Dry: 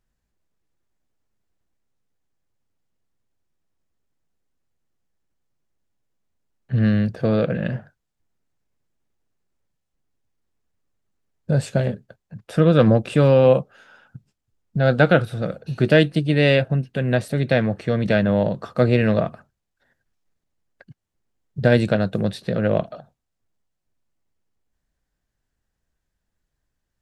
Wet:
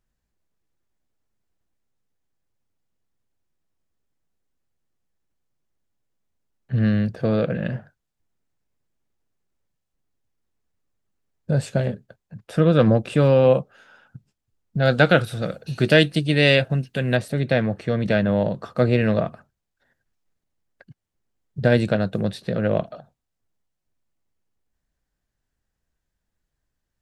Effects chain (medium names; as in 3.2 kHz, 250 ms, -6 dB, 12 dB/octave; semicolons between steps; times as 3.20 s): 14.82–17.17 s: treble shelf 2.4 kHz +9.5 dB; trim -1.5 dB